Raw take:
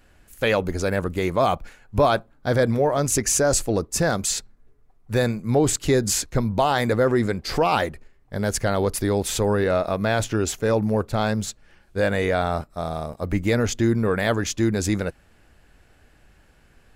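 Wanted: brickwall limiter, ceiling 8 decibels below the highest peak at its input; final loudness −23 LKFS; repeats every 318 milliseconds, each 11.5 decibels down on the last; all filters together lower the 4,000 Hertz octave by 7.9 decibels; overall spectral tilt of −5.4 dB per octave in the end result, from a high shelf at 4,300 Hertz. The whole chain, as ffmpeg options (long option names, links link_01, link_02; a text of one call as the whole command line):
ffmpeg -i in.wav -af "equalizer=frequency=4000:width_type=o:gain=-7.5,highshelf=frequency=4300:gain=-4.5,alimiter=limit=-16.5dB:level=0:latency=1,aecho=1:1:318|636|954:0.266|0.0718|0.0194,volume=4dB" out.wav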